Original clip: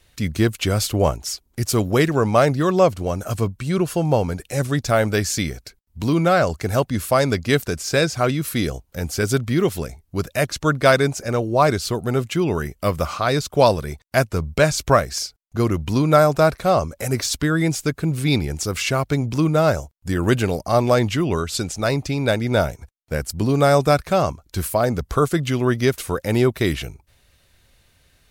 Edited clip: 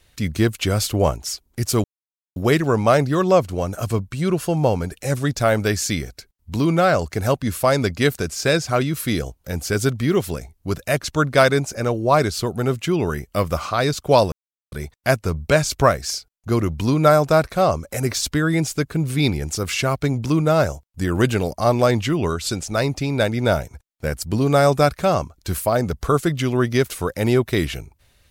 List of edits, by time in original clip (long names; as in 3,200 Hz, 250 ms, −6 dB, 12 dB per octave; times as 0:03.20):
0:01.84: splice in silence 0.52 s
0:13.80: splice in silence 0.40 s